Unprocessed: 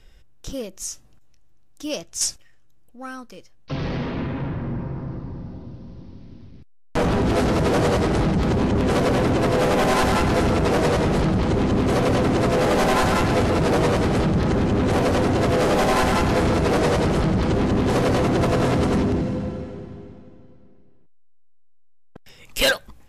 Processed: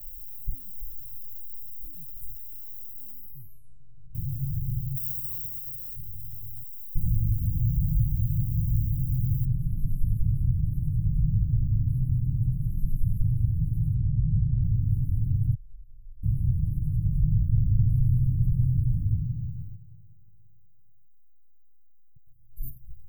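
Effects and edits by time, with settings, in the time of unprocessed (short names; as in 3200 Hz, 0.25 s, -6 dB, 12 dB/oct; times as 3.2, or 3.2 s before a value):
0.75–1.87 comb 1.6 ms, depth 54%
3.11 tape stop 1.04 s
4.95–5.95 spectral whitening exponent 0.1
7.46–8.74 reverse
9.45 noise floor step -43 dB -68 dB
13.94–14.63 air absorption 99 m
15.54–16.23 room tone
16.97–19.14 split-band echo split 340 Hz, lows 0.256 s, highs 0.153 s, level -6 dB
19.75–22.63 gain -9 dB
whole clip: inverse Chebyshev band-stop 570–4900 Hz, stop band 80 dB; comb 6.9 ms, depth 71%; gain +4 dB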